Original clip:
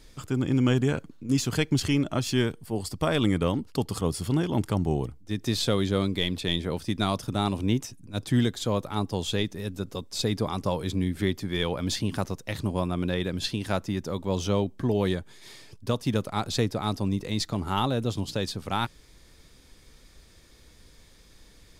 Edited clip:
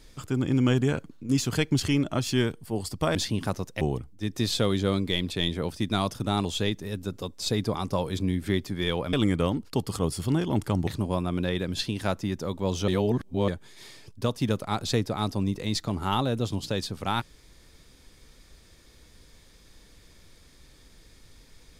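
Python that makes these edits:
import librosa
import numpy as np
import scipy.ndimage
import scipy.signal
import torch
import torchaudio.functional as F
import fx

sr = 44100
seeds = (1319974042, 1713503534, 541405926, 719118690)

y = fx.edit(x, sr, fx.swap(start_s=3.15, length_s=1.74, other_s=11.86, other_length_s=0.66),
    fx.cut(start_s=7.53, length_s=1.65),
    fx.reverse_span(start_s=14.53, length_s=0.6), tone=tone)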